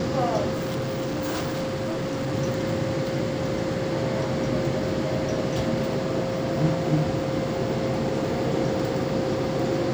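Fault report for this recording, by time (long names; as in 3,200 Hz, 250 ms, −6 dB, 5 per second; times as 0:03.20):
whistle 530 Hz −29 dBFS
0:00.53–0:02.33: clipping −24 dBFS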